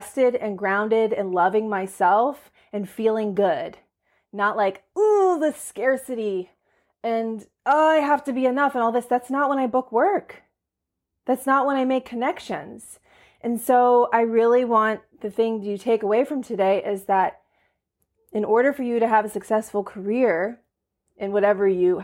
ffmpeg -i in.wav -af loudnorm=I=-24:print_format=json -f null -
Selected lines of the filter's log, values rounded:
"input_i" : "-22.0",
"input_tp" : "-4.5",
"input_lra" : "2.5",
"input_thresh" : "-32.6",